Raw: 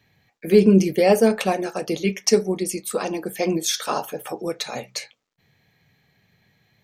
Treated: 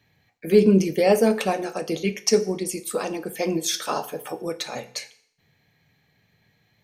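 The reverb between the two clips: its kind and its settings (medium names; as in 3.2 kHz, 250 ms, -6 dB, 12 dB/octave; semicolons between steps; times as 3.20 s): FDN reverb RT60 0.64 s, low-frequency decay 0.95×, high-frequency decay 0.95×, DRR 11.5 dB; trim -2 dB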